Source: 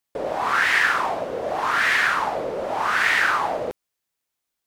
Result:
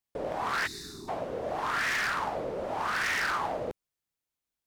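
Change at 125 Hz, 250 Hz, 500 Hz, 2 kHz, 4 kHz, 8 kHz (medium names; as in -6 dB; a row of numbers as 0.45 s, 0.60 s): -2.0 dB, -5.0 dB, -7.5 dB, -11.5 dB, -8.5 dB, -5.5 dB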